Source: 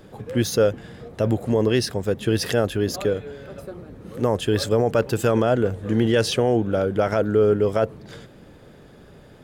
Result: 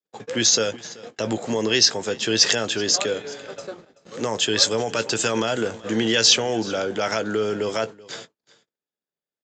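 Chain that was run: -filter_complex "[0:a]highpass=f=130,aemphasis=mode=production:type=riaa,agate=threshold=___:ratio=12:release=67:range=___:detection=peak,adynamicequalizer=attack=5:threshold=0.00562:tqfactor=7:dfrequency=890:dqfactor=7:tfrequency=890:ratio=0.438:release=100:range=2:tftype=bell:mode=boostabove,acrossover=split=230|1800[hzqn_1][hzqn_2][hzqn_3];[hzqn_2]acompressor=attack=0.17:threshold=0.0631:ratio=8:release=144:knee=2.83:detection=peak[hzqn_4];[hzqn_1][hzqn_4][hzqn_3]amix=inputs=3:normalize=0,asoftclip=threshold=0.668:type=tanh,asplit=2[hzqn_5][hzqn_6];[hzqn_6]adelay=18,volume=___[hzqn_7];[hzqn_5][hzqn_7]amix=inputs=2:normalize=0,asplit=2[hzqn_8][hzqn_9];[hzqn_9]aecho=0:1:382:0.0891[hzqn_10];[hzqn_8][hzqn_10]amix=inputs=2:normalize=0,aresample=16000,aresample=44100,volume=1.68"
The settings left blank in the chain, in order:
0.00631, 0.00316, 0.251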